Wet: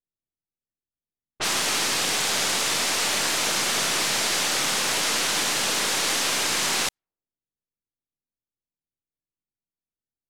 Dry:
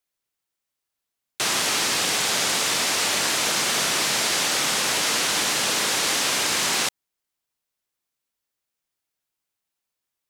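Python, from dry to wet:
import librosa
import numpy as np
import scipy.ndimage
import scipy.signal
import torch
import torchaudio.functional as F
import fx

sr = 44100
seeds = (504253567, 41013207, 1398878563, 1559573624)

y = np.where(x < 0.0, 10.0 ** (-3.0 / 20.0) * x, x)
y = fx.env_lowpass(y, sr, base_hz=300.0, full_db=-22.5)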